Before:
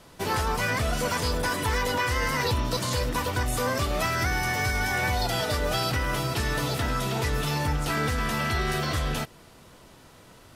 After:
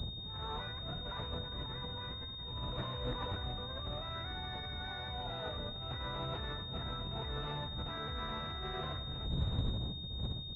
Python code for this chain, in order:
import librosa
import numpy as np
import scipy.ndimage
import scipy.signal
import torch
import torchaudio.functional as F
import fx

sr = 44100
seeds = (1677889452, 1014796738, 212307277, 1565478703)

p1 = fx.dmg_wind(x, sr, seeds[0], corner_hz=120.0, level_db=-23.0)
p2 = scipy.signal.sosfilt(scipy.signal.butter(2, 48.0, 'highpass', fs=sr, output='sos'), p1)
p3 = fx.peak_eq(p2, sr, hz=270.0, db=-6.0, octaves=1.9)
p4 = fx.hum_notches(p3, sr, base_hz=50, count=3)
p5 = fx.over_compress(p4, sr, threshold_db=-37.0, ratio=-1.0)
p6 = fx.air_absorb(p5, sr, metres=190.0)
p7 = p6 + fx.echo_single(p6, sr, ms=97, db=-13.0, dry=0)
p8 = fx.pwm(p7, sr, carrier_hz=3700.0)
y = p8 * 10.0 ** (-4.0 / 20.0)